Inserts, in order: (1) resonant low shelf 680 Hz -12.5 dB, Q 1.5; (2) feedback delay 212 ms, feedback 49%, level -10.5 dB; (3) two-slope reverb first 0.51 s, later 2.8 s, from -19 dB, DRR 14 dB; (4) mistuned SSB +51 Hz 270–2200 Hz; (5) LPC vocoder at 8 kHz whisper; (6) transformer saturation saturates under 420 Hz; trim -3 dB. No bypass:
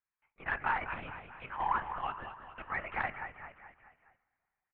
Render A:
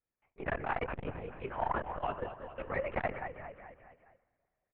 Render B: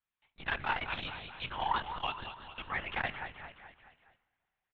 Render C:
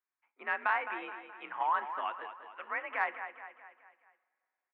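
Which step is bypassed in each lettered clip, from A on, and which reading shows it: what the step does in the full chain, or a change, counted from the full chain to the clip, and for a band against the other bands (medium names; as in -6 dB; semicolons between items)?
1, momentary loudness spread change -5 LU; 4, 4 kHz band +13.0 dB; 5, 250 Hz band -4.5 dB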